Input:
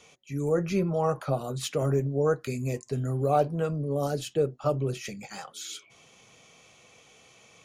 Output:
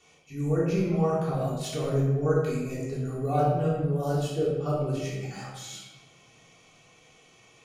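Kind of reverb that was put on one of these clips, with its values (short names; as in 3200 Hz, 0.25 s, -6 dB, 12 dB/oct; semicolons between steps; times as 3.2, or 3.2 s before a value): shoebox room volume 650 m³, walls mixed, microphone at 3.4 m; gain -8.5 dB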